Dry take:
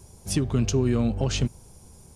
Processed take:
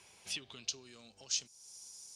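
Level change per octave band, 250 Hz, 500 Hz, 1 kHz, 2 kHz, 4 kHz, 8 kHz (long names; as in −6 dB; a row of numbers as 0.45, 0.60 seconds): −33.5, −29.5, −22.0, −9.5, −4.5, −4.5 decibels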